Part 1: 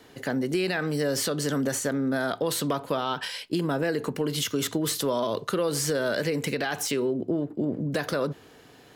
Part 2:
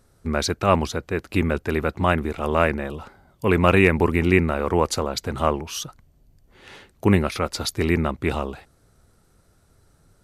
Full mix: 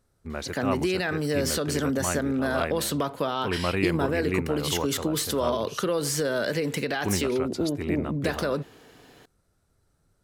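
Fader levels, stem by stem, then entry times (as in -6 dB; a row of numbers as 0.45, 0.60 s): 0.0, -10.5 dB; 0.30, 0.00 s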